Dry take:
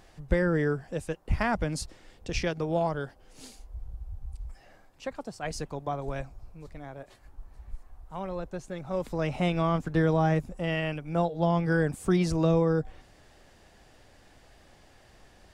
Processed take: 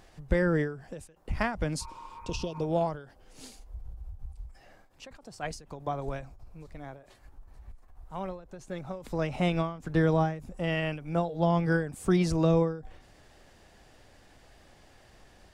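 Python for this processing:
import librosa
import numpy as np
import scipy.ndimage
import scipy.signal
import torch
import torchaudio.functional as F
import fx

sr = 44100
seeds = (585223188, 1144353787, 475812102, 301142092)

y = fx.spec_repair(x, sr, seeds[0], start_s=1.83, length_s=0.78, low_hz=820.0, high_hz=2500.0, source='after')
y = fx.end_taper(y, sr, db_per_s=110.0)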